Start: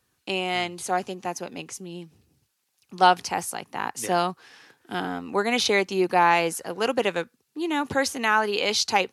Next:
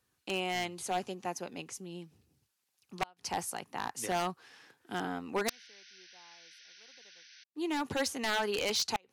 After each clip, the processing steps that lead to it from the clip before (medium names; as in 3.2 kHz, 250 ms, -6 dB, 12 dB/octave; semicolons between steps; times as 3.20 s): painted sound noise, 5.48–7.44 s, 1.4–6.2 kHz -15 dBFS; inverted gate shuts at -7 dBFS, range -35 dB; wavefolder -17 dBFS; trim -6.5 dB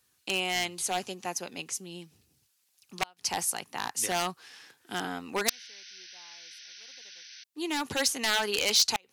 treble shelf 2 kHz +10.5 dB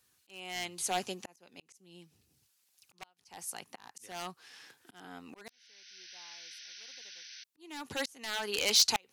slow attack 741 ms; trim -1 dB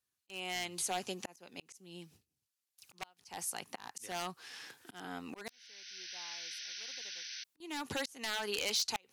gate with hold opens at -57 dBFS; compression 3:1, threshold -40 dBFS, peak gain reduction 14.5 dB; trim +4.5 dB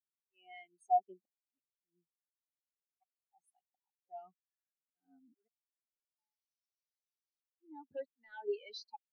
spectral contrast expander 4:1